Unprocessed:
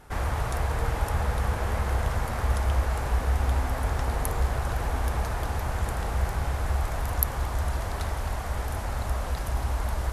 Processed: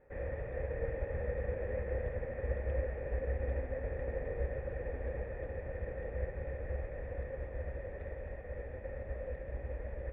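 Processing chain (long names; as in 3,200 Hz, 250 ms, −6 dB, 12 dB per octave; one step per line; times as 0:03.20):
dynamic equaliser 1,000 Hz, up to −8 dB, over −49 dBFS, Q 1.2
formant resonators in series e
high-shelf EQ 2,500 Hz −12 dB
notch filter 670 Hz, Q 12
expander for the loud parts 1.5 to 1, over −52 dBFS
level +10 dB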